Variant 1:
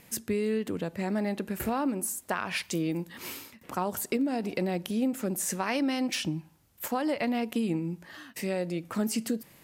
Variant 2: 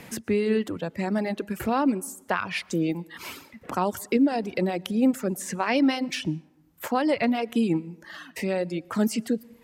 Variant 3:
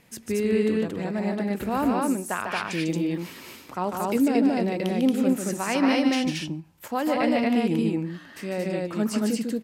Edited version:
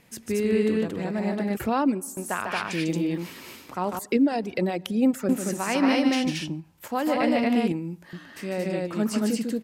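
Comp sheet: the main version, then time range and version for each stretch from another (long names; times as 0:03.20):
3
0:01.57–0:02.17: punch in from 2
0:03.99–0:05.29: punch in from 2
0:07.72–0:08.13: punch in from 1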